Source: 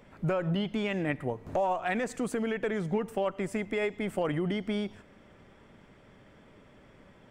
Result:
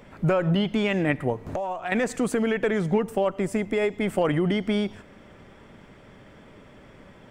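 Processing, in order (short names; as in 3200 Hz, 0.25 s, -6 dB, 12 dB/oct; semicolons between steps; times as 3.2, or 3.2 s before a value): 1.51–1.92 compressor 2.5:1, threshold -38 dBFS, peak gain reduction 9 dB; 3.01–4.01 bell 2100 Hz -4 dB 2.2 oct; gain +7 dB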